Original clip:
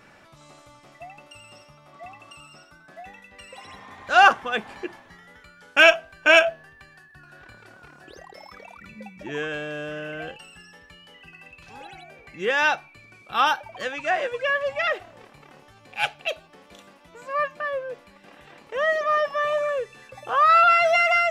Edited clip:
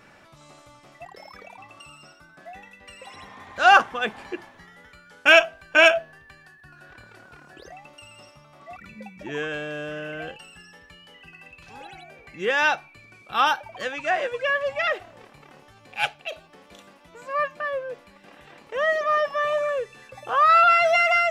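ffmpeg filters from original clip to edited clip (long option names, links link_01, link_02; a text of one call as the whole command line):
ffmpeg -i in.wav -filter_complex "[0:a]asplit=6[link_01][link_02][link_03][link_04][link_05][link_06];[link_01]atrim=end=1.052[link_07];[link_02]atrim=start=8.228:end=8.762[link_08];[link_03]atrim=start=2.088:end=8.232[link_09];[link_04]atrim=start=1.048:end=2.092[link_10];[link_05]atrim=start=8.758:end=16.32,asetpts=PTS-STARTPTS,afade=type=out:start_time=7.302:duration=0.26:silence=0.446684[link_11];[link_06]atrim=start=16.32,asetpts=PTS-STARTPTS,afade=type=in:duration=0.004:curve=hsin:silence=0.446684[link_12];[link_07][link_08]acrossfade=duration=0.004:curve1=hsin:curve2=hsin[link_13];[link_13][link_09]acrossfade=duration=0.004:curve1=hsin:curve2=hsin[link_14];[link_14][link_10]acrossfade=duration=0.004:curve1=hsin:curve2=hsin[link_15];[link_11][link_12]concat=n=2:v=0:a=1[link_16];[link_15][link_16]acrossfade=duration=0.004:curve1=hsin:curve2=hsin" out.wav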